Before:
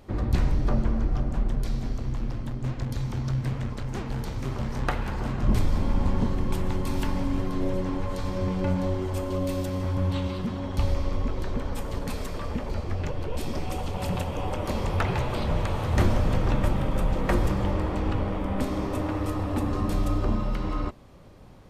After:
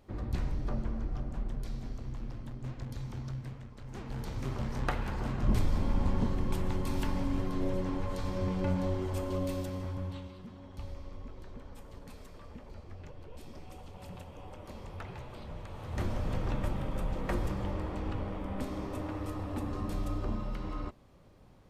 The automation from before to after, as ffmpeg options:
-af "volume=3.76,afade=t=out:st=3.2:d=0.51:silence=0.398107,afade=t=in:st=3.71:d=0.68:silence=0.223872,afade=t=out:st=9.36:d=0.95:silence=0.237137,afade=t=in:st=15.67:d=0.69:silence=0.375837"

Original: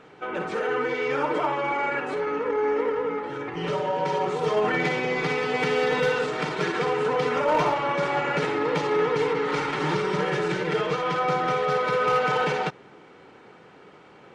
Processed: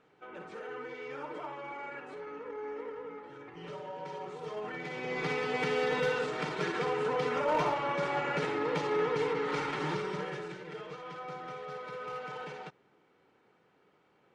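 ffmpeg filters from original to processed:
-af "volume=0.447,afade=t=in:st=4.87:d=0.41:silence=0.354813,afade=t=out:st=9.71:d=0.87:silence=0.281838"

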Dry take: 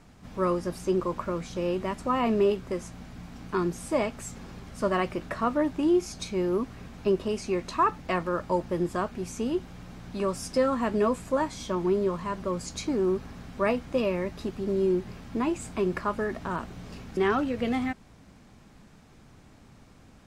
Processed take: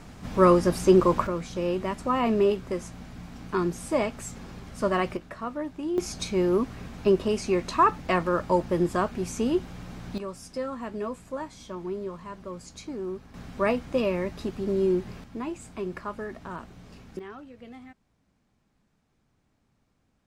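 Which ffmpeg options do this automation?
-af "asetnsamples=n=441:p=0,asendcmd='1.27 volume volume 1dB;5.17 volume volume -7dB;5.98 volume volume 3.5dB;10.18 volume volume -8dB;13.34 volume volume 1dB;15.24 volume volume -6dB;17.19 volume volume -17.5dB',volume=2.66"

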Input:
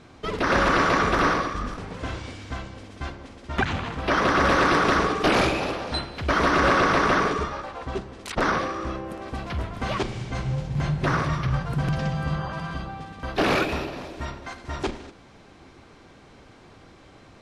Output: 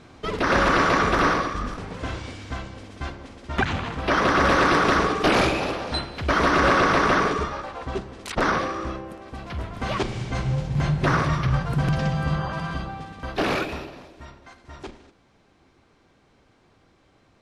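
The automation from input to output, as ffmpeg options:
-af "volume=2.99,afade=t=out:st=8.79:d=0.45:silence=0.446684,afade=t=in:st=9.24:d=0.98:silence=0.375837,afade=t=out:st=12.72:d=1.41:silence=0.237137"

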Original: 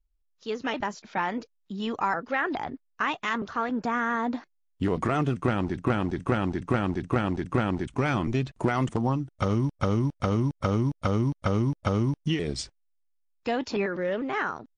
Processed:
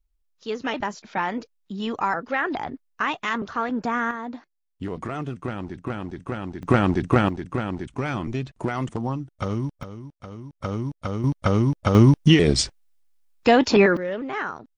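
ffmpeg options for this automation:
-af "asetnsamples=n=441:p=0,asendcmd='4.11 volume volume -5dB;6.63 volume volume 7dB;7.29 volume volume -1.5dB;9.83 volume volume -13.5dB;10.53 volume volume -3dB;11.24 volume volume 5dB;11.95 volume volume 12dB;13.97 volume volume 0dB',volume=1.33"

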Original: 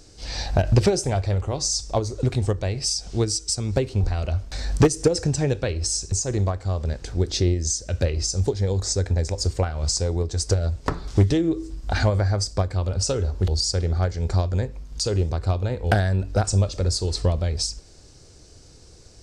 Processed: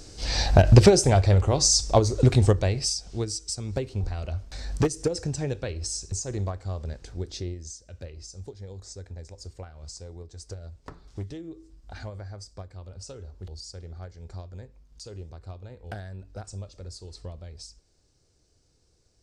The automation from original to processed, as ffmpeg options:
-af "volume=1.58,afade=t=out:st=2.46:d=0.58:silence=0.281838,afade=t=out:st=6.67:d=1.15:silence=0.281838"

